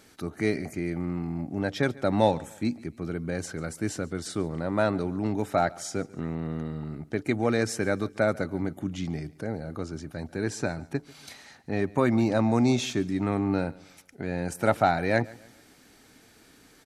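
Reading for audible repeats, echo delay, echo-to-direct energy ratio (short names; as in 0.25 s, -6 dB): 2, 0.142 s, -21.5 dB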